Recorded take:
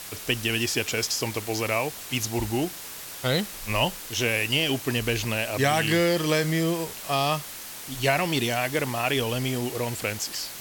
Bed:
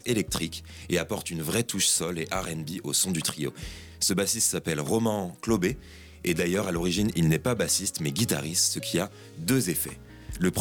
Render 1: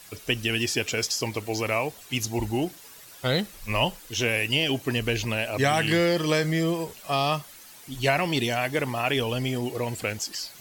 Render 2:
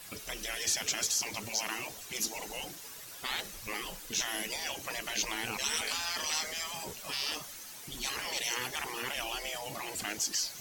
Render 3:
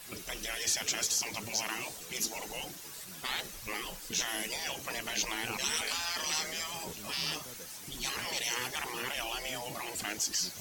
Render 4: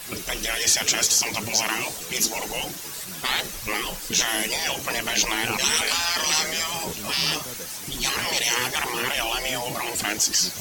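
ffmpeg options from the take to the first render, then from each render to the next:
ffmpeg -i in.wav -af "afftdn=noise_reduction=11:noise_floor=-39" out.wav
ffmpeg -i in.wav -af "afftfilt=real='re*lt(hypot(re,im),0.0794)':imag='im*lt(hypot(re,im),0.0794)':win_size=1024:overlap=0.75,adynamicequalizer=threshold=0.00282:dfrequency=6100:dqfactor=2.9:tfrequency=6100:tqfactor=2.9:attack=5:release=100:ratio=0.375:range=3.5:mode=boostabove:tftype=bell" out.wav
ffmpeg -i in.wav -i bed.wav -filter_complex "[1:a]volume=-26dB[link_01];[0:a][link_01]amix=inputs=2:normalize=0" out.wav
ffmpeg -i in.wav -af "volume=11dB" out.wav

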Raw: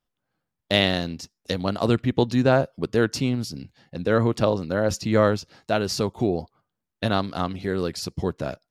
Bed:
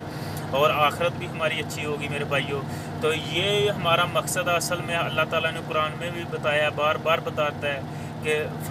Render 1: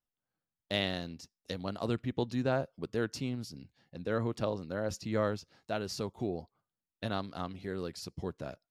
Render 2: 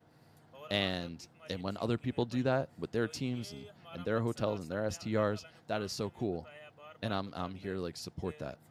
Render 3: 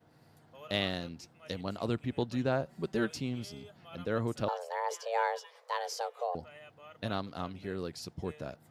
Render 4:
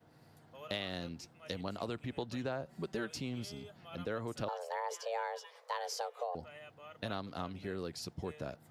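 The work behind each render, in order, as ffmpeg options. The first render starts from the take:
ffmpeg -i in.wav -af "volume=-12dB" out.wav
ffmpeg -i in.wav -i bed.wav -filter_complex "[1:a]volume=-30dB[link_01];[0:a][link_01]amix=inputs=2:normalize=0" out.wav
ffmpeg -i in.wav -filter_complex "[0:a]asettb=1/sr,asplit=3[link_01][link_02][link_03];[link_01]atrim=end=2.654[link_04];[link_02]atrim=start=2.65:end=3.11,asetpts=PTS-STARTPTS,afade=type=in:duration=0.004:curve=qsin,afade=type=out:start_time=0.456:duration=0.004:curve=qsin,aecho=1:1:5.2:0.97,atrim=end_sample=20286[link_05];[link_03]atrim=start=3.106[link_06];[link_04][link_05]acrossfade=duration=0.004:curve1=hsin:curve2=qsin[link_07];[link_07][link_06]acrossfade=duration=0.004:curve1=qsin:curve2=hsin,asettb=1/sr,asplit=3[link_08][link_09][link_10];[link_08]atrim=end=4.484[link_11];[link_09]atrim=start=4.48:end=6.35,asetpts=PTS-STARTPTS,afade=type=in:duration=0.004:curve=qsin,afade=type=out:start_time=1.866:duration=0.004:curve=qsin,afreqshift=350[link_12];[link_10]atrim=start=6.346[link_13];[link_11][link_12]acrossfade=duration=0.004:curve1=hsin:curve2=qsin[link_14];[link_14][link_13]acrossfade=duration=0.004:curve1=qsin:curve2=hsin" out.wav
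ffmpeg -i in.wav -filter_complex "[0:a]acrossover=split=410[link_01][link_02];[link_01]alimiter=level_in=8.5dB:limit=-24dB:level=0:latency=1,volume=-8.5dB[link_03];[link_03][link_02]amix=inputs=2:normalize=0,acompressor=threshold=-34dB:ratio=6" out.wav

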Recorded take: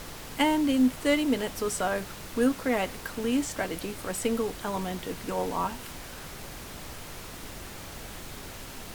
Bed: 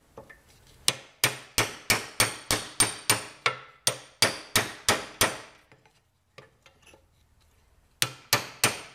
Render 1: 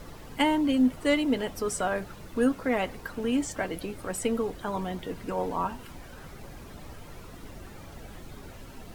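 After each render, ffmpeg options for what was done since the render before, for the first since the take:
ffmpeg -i in.wav -af "afftdn=noise_reduction=11:noise_floor=-42" out.wav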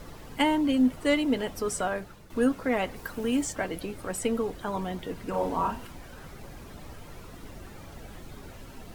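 ffmpeg -i in.wav -filter_complex "[0:a]asettb=1/sr,asplit=3[link_01][link_02][link_03];[link_01]atrim=end=2.964[link_04];[link_02]atrim=start=2.96:end=3.51,asetpts=PTS-STARTPTS,afade=type=in:duration=0.004:curve=qsin,afade=type=out:start_time=0.546:duration=0.004:curve=qsin,highshelf=frequency=7700:gain=7.5[link_05];[link_03]atrim=start=3.506[link_06];[link_04][link_05]acrossfade=duration=0.004:curve1=hsin:curve2=qsin[link_07];[link_07][link_06]acrossfade=duration=0.004:curve1=qsin:curve2=hsin,asettb=1/sr,asplit=3[link_08][link_09][link_10];[link_08]atrim=end=5.304[link_11];[link_09]atrim=start=5.3:end=5.87,asetpts=PTS-STARTPTS,afade=type=in:duration=0.004:curve=qsin,afade=type=out:start_time=0.566:duration=0.004:curve=qsin,asplit=2[link_12][link_13];[link_13]adelay=36,volume=-3dB[link_14];[link_12][link_14]amix=inputs=2:normalize=0,atrim=end_sample=25137[link_15];[link_10]atrim=start=5.866[link_16];[link_11][link_15]acrossfade=duration=0.004:curve1=hsin:curve2=qsin[link_17];[link_17][link_16]acrossfade=duration=0.004:curve1=qsin:curve2=hsin,asplit=2[link_18][link_19];[link_18]atrim=end=2.3,asetpts=PTS-STARTPTS,afade=type=out:start_time=1.79:duration=0.51:silence=0.334965[link_20];[link_19]atrim=start=2.3,asetpts=PTS-STARTPTS,afade=type=in:duration=0.004:curve=hsin:silence=0.334965[link_21];[link_20][link_21]concat=n=2:v=0:a=1" out.wav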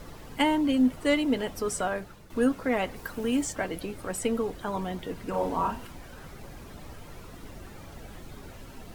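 ffmpeg -i in.wav -af anull out.wav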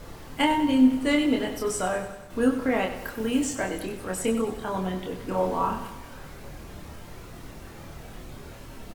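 ffmpeg -i in.wav -filter_complex "[0:a]asplit=2[link_01][link_02];[link_02]adelay=27,volume=-3dB[link_03];[link_01][link_03]amix=inputs=2:normalize=0,aecho=1:1:96|192|288|384|480|576:0.282|0.155|0.0853|0.0469|0.0258|0.0142" out.wav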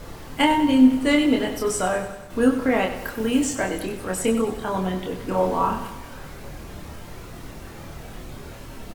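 ffmpeg -i in.wav -af "volume=4dB" out.wav

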